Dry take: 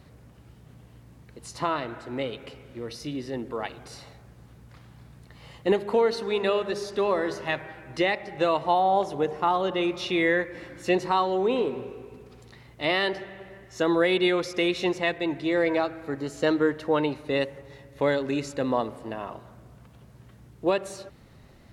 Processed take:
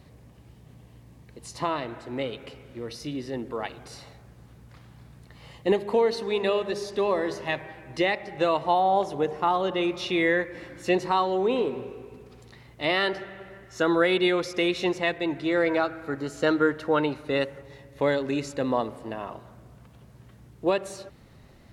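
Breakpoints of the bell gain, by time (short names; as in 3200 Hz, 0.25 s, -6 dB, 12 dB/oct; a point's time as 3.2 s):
bell 1400 Hz 0.22 oct
-8 dB
from 2.18 s -1 dB
from 5.53 s -9 dB
from 8.04 s -1 dB
from 12.97 s +9 dB
from 14.19 s +1 dB
from 15.37 s +9 dB
from 17.63 s -1 dB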